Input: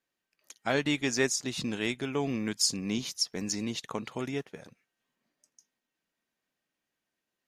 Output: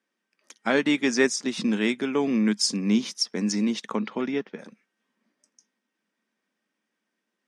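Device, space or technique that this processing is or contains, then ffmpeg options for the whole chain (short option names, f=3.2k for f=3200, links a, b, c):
television speaker: -filter_complex "[0:a]highpass=f=200:w=0.5412,highpass=f=200:w=1.3066,equalizer=f=210:t=q:w=4:g=8,equalizer=f=700:t=q:w=4:g=-5,equalizer=f=2.8k:t=q:w=4:g=-4,equalizer=f=4.2k:t=q:w=4:g=-7,equalizer=f=6.9k:t=q:w=4:g=-8,lowpass=f=8.6k:w=0.5412,lowpass=f=8.6k:w=1.3066,asettb=1/sr,asplit=3[a][b][c];[a]atrim=end=3.954[d];[b]atrim=start=3.95:end=4.59,asetpts=PTS-STARTPTS,afade=t=in:d=0.004:c=qsin,afade=t=out:st=0.636:d=0.004:c=qsin,lowpass=f=5.2k:w=0.5412,lowpass=f=5.2k:w=1.3066[e];[c]atrim=start=4.586[f];[d][e]acrossfade=d=0.004:c1=hsin:c2=qsin[g];[g][f]acrossfade=d=0.004:c1=qsin:c2=hsin,volume=6.5dB"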